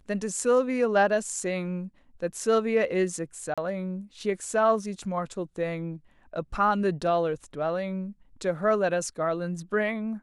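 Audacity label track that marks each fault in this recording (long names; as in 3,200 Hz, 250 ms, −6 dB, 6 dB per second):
3.540000	3.580000	drop-out 36 ms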